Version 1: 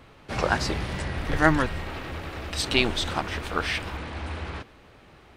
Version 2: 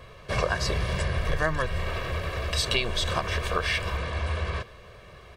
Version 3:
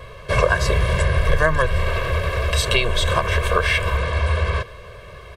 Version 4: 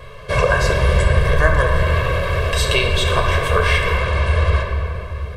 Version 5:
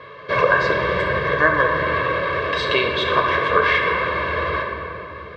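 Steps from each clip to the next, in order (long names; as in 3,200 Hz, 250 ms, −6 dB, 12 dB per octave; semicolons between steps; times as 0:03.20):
comb filter 1.8 ms, depth 78%; downward compressor 6 to 1, threshold −24 dBFS, peak gain reduction 11.5 dB; level +2 dB
dynamic equaliser 4,900 Hz, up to −5 dB, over −46 dBFS, Q 2.5; comb filter 1.9 ms, depth 52%; level +6.5 dB
rectangular room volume 150 cubic metres, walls hard, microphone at 0.38 metres
loudspeaker in its box 210–4,100 Hz, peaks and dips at 290 Hz +9 dB, 730 Hz −6 dB, 1,100 Hz +4 dB, 1,800 Hz +4 dB, 2,800 Hz −5 dB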